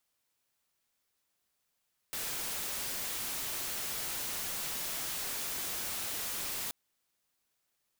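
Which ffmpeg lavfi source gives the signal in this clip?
-f lavfi -i "anoisesrc=c=white:a=0.0245:d=4.58:r=44100:seed=1"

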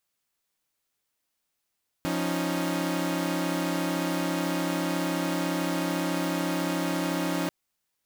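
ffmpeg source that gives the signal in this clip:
-f lavfi -i "aevalsrc='0.0398*((2*mod(174.61*t,1)-1)+(2*mod(277.18*t,1)-1)+(2*mod(311.13*t,1)-1))':d=5.44:s=44100"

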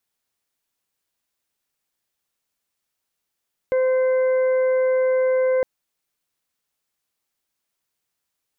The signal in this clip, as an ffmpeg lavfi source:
-f lavfi -i "aevalsrc='0.158*sin(2*PI*516*t)+0.0168*sin(2*PI*1032*t)+0.0158*sin(2*PI*1548*t)+0.0158*sin(2*PI*2064*t)':d=1.91:s=44100"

